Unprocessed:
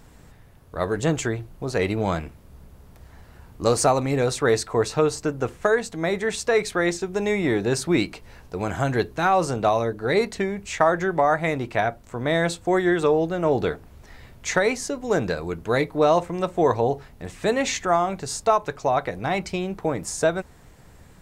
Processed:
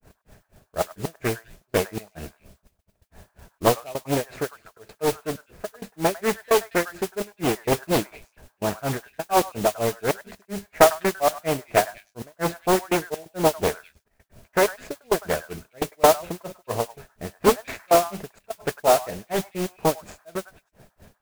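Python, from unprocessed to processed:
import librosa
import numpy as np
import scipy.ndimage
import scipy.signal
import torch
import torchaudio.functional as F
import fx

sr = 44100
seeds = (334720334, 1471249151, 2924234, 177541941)

y = scipy.ndimage.median_filter(x, 15, mode='constant')
y = fx.step_gate(y, sr, bpm=129, pattern='x.xxxxx.x.xxxx.x', floor_db=-24.0, edge_ms=4.5)
y = fx.granulator(y, sr, seeds[0], grain_ms=199.0, per_s=4.2, spray_ms=12.0, spread_st=0)
y = fx.graphic_eq_31(y, sr, hz=(200, 400, 630, 1600, 2500), db=(5, 5, 11, 6, 10))
y = fx.echo_stepped(y, sr, ms=101, hz=1200.0, octaves=1.4, feedback_pct=70, wet_db=-10.5)
y = fx.mod_noise(y, sr, seeds[1], snr_db=10)
y = fx.doppler_dist(y, sr, depth_ms=0.91)
y = y * librosa.db_to_amplitude(-1.0)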